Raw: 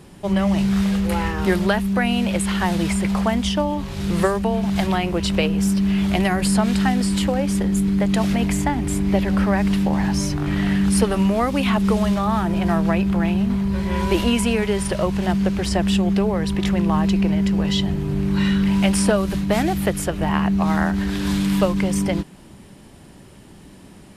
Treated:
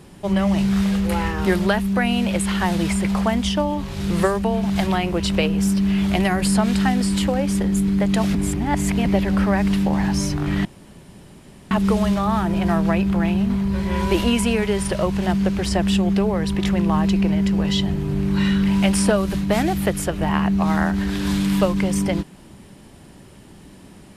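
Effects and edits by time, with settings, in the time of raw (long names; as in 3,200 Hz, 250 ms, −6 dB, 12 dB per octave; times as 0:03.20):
0:08.35–0:09.06: reverse
0:10.65–0:11.71: fill with room tone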